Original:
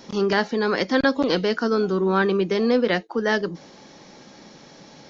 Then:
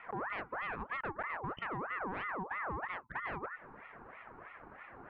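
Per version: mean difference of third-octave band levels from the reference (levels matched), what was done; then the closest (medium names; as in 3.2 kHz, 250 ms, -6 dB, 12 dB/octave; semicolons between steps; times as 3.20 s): 11.0 dB: low-pass 1.2 kHz 24 dB/octave; compression 5:1, threshold -32 dBFS, peak gain reduction 15.5 dB; saturation -26 dBFS, distortion -21 dB; ring modulator with a swept carrier 1.1 kHz, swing 50%, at 3.1 Hz; trim -2 dB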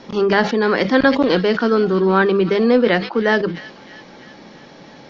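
2.0 dB: low-pass 3.6 kHz 12 dB/octave; hum notches 50/100/150/200 Hz; feedback echo behind a high-pass 322 ms, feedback 60%, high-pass 2.1 kHz, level -13 dB; decay stretcher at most 120 dB/s; trim +5.5 dB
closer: second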